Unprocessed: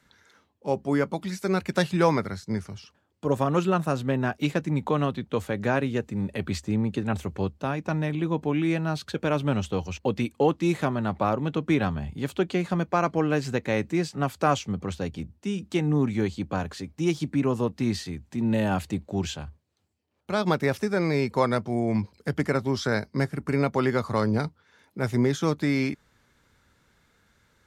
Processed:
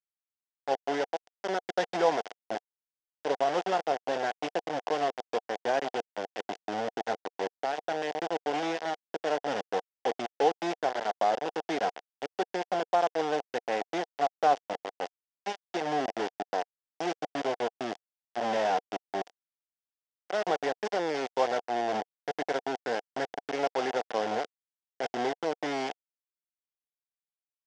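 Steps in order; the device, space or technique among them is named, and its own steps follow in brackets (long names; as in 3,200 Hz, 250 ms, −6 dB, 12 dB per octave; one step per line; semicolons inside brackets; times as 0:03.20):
hand-held game console (bit reduction 4 bits; loudspeaker in its box 420–5,200 Hz, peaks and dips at 470 Hz +4 dB, 730 Hz +10 dB, 1,200 Hz −8 dB, 2,400 Hz −7 dB, 4,100 Hz −9 dB)
level −5 dB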